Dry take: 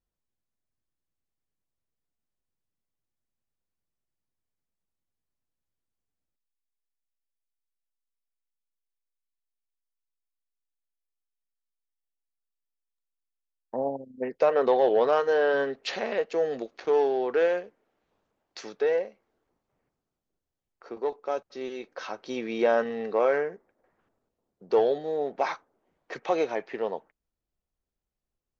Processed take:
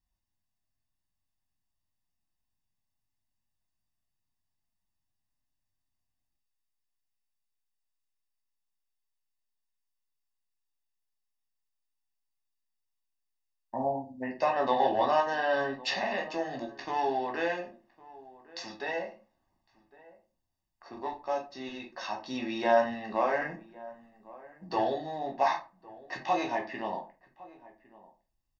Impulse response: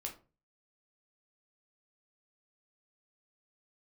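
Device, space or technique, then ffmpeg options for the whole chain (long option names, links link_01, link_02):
microphone above a desk: -filter_complex "[0:a]aecho=1:1:1.1:0.89[link_01];[1:a]atrim=start_sample=2205[link_02];[link_01][link_02]afir=irnorm=-1:irlink=0,equalizer=frequency=5000:width_type=o:width=0.3:gain=5.5,asettb=1/sr,asplit=3[link_03][link_04][link_05];[link_03]atrim=end=23.414[link_06];[link_04]atrim=start=23.41:end=24.76,asetpts=PTS-STARTPTS,afade=type=in:duration=0.004:curve=qsin,afade=type=out:start_time=1.346:duration=0.004:curve=qsin,aecho=1:1:6.2:0.9,atrim=end_sample=59535[link_07];[link_05]atrim=start=24.756[link_08];[link_06][link_07]acrossfade=duration=0.004:curve1=hsin:curve2=qsin[link_09];[link_09][link_08]acrossfade=duration=0.004:curve1=qsin:curve2=hsin,asplit=2[link_10][link_11];[link_11]adelay=1108,volume=-20dB,highshelf=frequency=4000:gain=-24.9[link_12];[link_10][link_12]amix=inputs=2:normalize=0"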